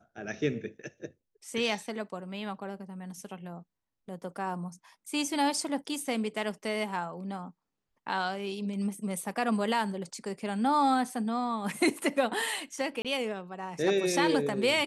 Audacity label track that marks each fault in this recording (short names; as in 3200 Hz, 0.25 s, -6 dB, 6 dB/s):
13.020000	13.050000	gap 27 ms